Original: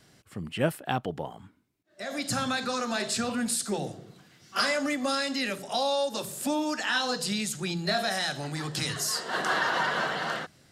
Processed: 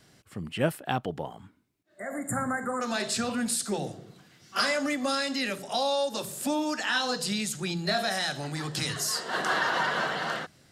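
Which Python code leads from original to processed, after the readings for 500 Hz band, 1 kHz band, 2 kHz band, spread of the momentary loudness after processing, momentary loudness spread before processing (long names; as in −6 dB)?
0.0 dB, 0.0 dB, 0.0 dB, 10 LU, 10 LU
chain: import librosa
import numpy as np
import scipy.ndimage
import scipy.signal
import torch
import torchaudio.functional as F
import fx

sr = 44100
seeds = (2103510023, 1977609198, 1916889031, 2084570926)

y = fx.spec_repair(x, sr, seeds[0], start_s=1.97, length_s=0.82, low_hz=2200.0, high_hz=6900.0, source='before')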